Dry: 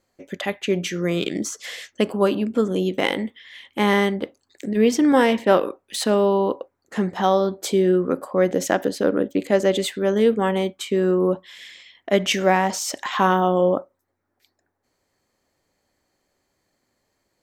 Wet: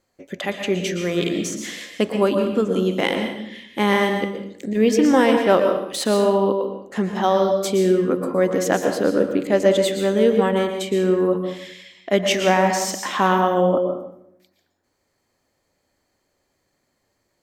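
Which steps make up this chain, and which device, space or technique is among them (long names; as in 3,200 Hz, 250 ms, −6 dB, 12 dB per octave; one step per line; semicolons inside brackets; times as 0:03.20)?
bathroom (convolution reverb RT60 0.75 s, pre-delay 110 ms, DRR 4.5 dB)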